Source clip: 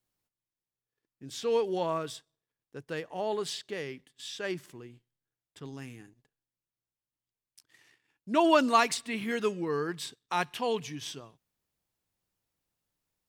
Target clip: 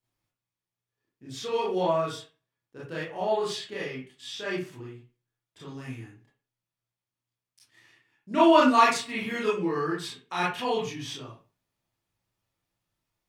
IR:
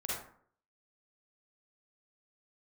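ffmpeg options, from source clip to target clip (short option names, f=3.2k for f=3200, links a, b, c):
-filter_complex "[0:a]highshelf=f=9.7k:g=-7[a];[1:a]atrim=start_sample=2205,asetrate=74970,aresample=44100[b];[a][b]afir=irnorm=-1:irlink=0,volume=5.5dB"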